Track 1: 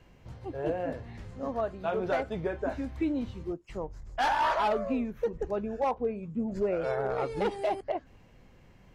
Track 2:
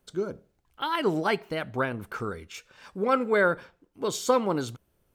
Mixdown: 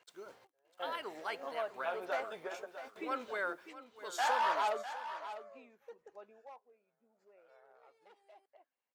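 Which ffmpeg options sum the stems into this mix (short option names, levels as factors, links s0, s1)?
-filter_complex "[0:a]volume=0.631,afade=t=out:st=5.66:d=0.31:silence=0.223872,asplit=2[s0][s1];[s1]volume=0.266[s2];[1:a]acrusher=bits=9:mix=0:aa=0.000001,volume=0.251,asplit=3[s3][s4][s5];[s4]volume=0.168[s6];[s5]apad=whole_len=394406[s7];[s0][s7]sidechaingate=range=0.0178:threshold=0.00112:ratio=16:detection=peak[s8];[s2][s6]amix=inputs=2:normalize=0,aecho=0:1:650:1[s9];[s8][s3][s9]amix=inputs=3:normalize=0,highpass=650"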